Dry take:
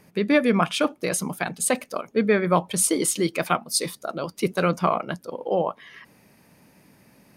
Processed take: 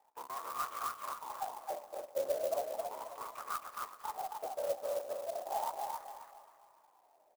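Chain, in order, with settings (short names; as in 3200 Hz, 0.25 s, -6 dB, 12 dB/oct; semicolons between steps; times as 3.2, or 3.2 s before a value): cycle switcher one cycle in 3, inverted; HPF 400 Hz 12 dB/oct; tube stage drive 29 dB, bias 0.55; wah 0.36 Hz 550–1200 Hz, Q 14; feedback echo 0.268 s, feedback 32%, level -3 dB; on a send at -17 dB: reverb RT60 2.7 s, pre-delay 0.108 s; on the sum: clock jitter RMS 0.044 ms; gain +6 dB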